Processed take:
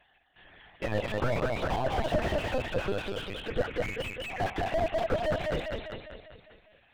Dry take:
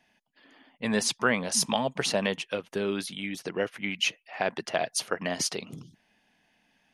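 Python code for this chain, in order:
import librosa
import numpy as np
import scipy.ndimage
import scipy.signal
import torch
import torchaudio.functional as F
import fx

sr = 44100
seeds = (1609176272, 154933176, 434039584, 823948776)

p1 = fx.spec_dropout(x, sr, seeds[0], share_pct=20)
p2 = fx.low_shelf_res(p1, sr, hz=360.0, db=-9.5, q=1.5)
p3 = p2 + fx.echo_feedback(p2, sr, ms=199, feedback_pct=54, wet_db=-5.0, dry=0)
p4 = fx.lpc_vocoder(p3, sr, seeds[1], excitation='pitch_kept', order=10)
p5 = fx.slew_limit(p4, sr, full_power_hz=22.0)
y = F.gain(torch.from_numpy(p5), 4.0).numpy()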